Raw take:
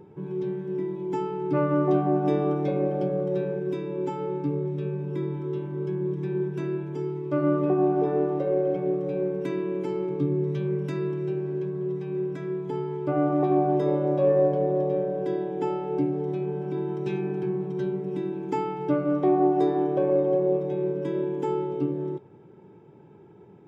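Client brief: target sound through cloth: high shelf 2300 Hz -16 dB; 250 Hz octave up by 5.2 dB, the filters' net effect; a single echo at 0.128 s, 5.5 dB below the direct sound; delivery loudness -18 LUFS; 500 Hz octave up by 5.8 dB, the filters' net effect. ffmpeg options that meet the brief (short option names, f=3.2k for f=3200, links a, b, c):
-af "equalizer=f=250:t=o:g=4.5,equalizer=f=500:t=o:g=7,highshelf=f=2.3k:g=-16,aecho=1:1:128:0.531,volume=3.5dB"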